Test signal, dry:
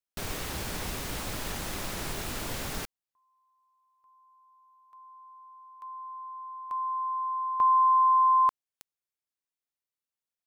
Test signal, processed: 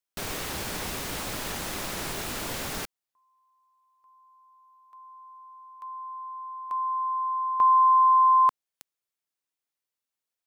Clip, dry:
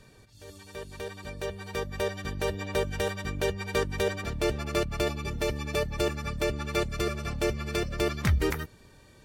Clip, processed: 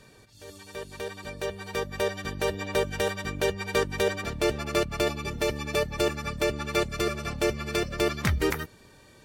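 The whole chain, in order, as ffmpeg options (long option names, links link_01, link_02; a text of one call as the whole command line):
ffmpeg -i in.wav -af "lowshelf=frequency=120:gain=-8,volume=3dB" out.wav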